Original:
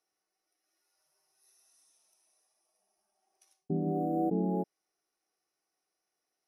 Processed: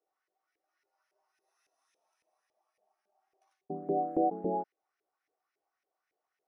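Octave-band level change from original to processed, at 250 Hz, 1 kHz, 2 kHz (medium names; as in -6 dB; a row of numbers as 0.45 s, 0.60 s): -5.0 dB, +4.5 dB, no reading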